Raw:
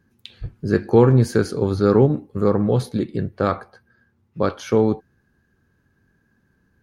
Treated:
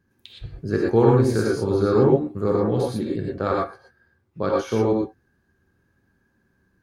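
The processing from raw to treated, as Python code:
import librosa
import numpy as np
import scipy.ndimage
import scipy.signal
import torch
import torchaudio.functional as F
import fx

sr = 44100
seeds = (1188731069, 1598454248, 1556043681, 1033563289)

y = fx.rev_gated(x, sr, seeds[0], gate_ms=140, shape='rising', drr_db=-2.5)
y = y * librosa.db_to_amplitude(-5.5)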